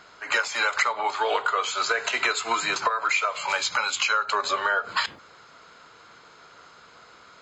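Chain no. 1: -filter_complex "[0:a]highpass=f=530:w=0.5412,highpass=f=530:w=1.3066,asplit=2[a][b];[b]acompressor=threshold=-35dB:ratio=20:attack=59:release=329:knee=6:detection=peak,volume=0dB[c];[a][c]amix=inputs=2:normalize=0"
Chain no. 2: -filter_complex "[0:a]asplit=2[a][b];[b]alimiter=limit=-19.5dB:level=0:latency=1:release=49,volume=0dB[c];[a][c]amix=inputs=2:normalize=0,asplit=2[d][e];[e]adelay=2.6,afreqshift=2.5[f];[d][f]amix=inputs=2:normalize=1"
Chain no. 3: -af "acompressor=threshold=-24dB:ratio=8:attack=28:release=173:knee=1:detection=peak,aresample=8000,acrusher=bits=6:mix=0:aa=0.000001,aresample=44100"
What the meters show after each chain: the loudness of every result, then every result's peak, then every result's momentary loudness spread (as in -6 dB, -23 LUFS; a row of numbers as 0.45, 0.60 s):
-22.5, -23.5, -27.0 LUFS; -7.5, -9.0, -11.0 dBFS; 3, 3, 3 LU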